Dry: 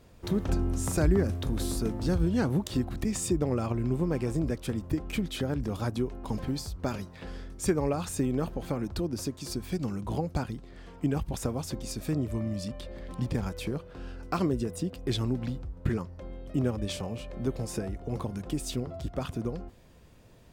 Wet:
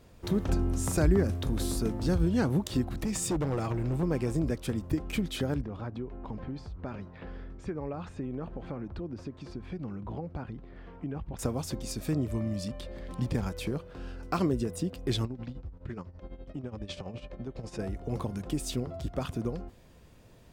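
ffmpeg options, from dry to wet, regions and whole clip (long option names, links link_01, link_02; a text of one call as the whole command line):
ffmpeg -i in.wav -filter_complex "[0:a]asettb=1/sr,asplit=3[link_01][link_02][link_03];[link_01]atrim=end=2.994[link_04];[link_02]atrim=start=2.99:end=4.03,asetpts=PTS-STARTPTS,afade=type=in:duration=0.004:curve=qsin,afade=type=out:start_time=1.036:duration=0.004:curve=qsin,aecho=1:1:6.3:0.39,atrim=end_sample=45864,asoftclip=type=hard:threshold=-25.5dB[link_05];[link_03]atrim=start=4.026[link_06];[link_04][link_05]acrossfade=duration=0.004:curve1=hsin:curve2=qsin[link_07];[link_07][link_06]acrossfade=duration=0.004:curve1=qsin:curve2=hsin,asettb=1/sr,asplit=3[link_08][link_09][link_10];[link_08]atrim=end=5.614[link_11];[link_09]atrim=start=5.61:end=11.39,asetpts=PTS-STARTPTS,afade=type=in:duration=0.004:curve=qsin,afade=type=out:start_time=5.776:duration=0.004:curve=qsin,acompressor=threshold=-38dB:ratio=2:attack=3.2:release=140:knee=1:detection=peak,lowpass=2300[link_12];[link_10]atrim=start=11.386[link_13];[link_11][link_12]acrossfade=duration=0.004:curve1=hsin:curve2=qsin[link_14];[link_14][link_13]acrossfade=duration=0.004:curve1=qsin:curve2=hsin,asettb=1/sr,asplit=3[link_15][link_16][link_17];[link_15]atrim=end=15.254[link_18];[link_16]atrim=start=15.25:end=17.79,asetpts=PTS-STARTPTS,afade=type=in:duration=0.004:curve=qsin,afade=type=out:start_time=2.536:duration=0.004:curve=qsin,lowpass=5200,tremolo=f=12:d=0.76,acompressor=threshold=-33dB:ratio=10:attack=3.2:release=140:knee=1:detection=peak[link_19];[link_17]atrim=start=17.786[link_20];[link_18][link_19]acrossfade=duration=0.004:curve1=hsin:curve2=qsin[link_21];[link_21][link_20]acrossfade=duration=0.004:curve1=qsin:curve2=hsin" out.wav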